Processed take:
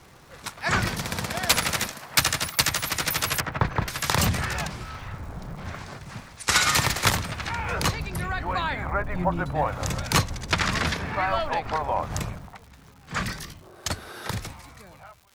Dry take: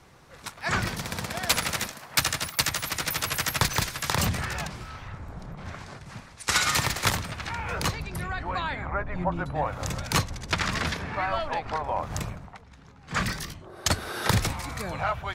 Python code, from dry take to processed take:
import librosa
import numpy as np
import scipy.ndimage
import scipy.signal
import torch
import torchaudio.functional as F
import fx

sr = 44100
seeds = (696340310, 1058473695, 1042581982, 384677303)

y = fx.fade_out_tail(x, sr, length_s=3.47)
y = fx.lowpass(y, sr, hz=1400.0, slope=12, at=(3.4, 3.88))
y = fx.dmg_crackle(y, sr, seeds[0], per_s=280.0, level_db=-46.0)
y = y * librosa.db_to_amplitude(3.0)